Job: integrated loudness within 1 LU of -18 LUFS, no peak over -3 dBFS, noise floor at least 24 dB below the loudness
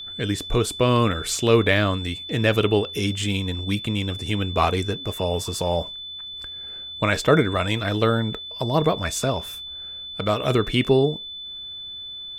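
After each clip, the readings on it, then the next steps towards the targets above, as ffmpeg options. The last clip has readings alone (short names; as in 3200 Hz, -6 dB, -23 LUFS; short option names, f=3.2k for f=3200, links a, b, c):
steady tone 3500 Hz; tone level -33 dBFS; loudness -23.5 LUFS; peak -5.0 dBFS; loudness target -18.0 LUFS
-> -af "bandreject=f=3.5k:w=30"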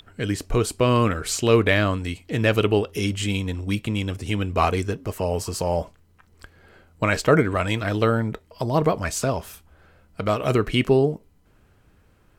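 steady tone none; loudness -23.0 LUFS; peak -5.0 dBFS; loudness target -18.0 LUFS
-> -af "volume=5dB,alimiter=limit=-3dB:level=0:latency=1"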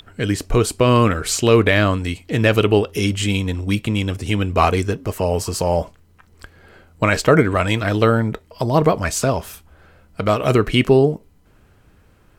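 loudness -18.0 LUFS; peak -3.0 dBFS; noise floor -53 dBFS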